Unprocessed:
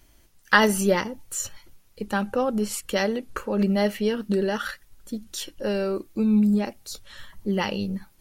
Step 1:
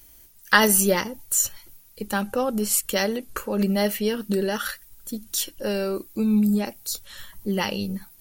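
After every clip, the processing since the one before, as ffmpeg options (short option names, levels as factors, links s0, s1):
-af "aemphasis=mode=production:type=50fm"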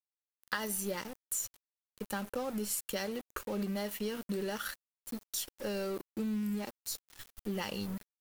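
-af "acompressor=threshold=0.0708:ratio=12,aeval=exprs='val(0)*gte(abs(val(0)),0.0188)':c=same,volume=0.376"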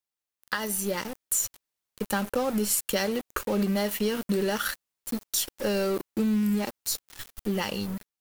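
-af "dynaudnorm=f=270:g=7:m=1.78,volume=1.68"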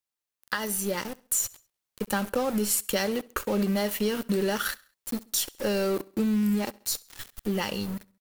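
-af "aecho=1:1:67|134|201:0.0708|0.0311|0.0137"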